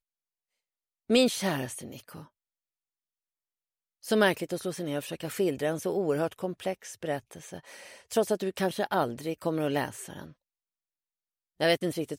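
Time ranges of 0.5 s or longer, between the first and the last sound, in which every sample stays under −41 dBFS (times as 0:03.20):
0:02.23–0:04.04
0:10.30–0:11.60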